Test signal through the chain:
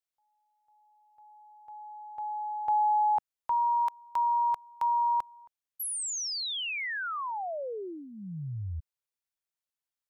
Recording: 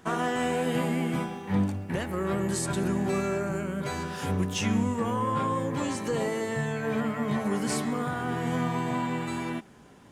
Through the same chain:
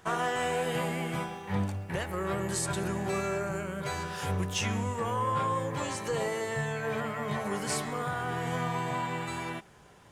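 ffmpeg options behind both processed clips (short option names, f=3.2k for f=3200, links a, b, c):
-af "equalizer=f=250:t=o:w=0.79:g=-12.5"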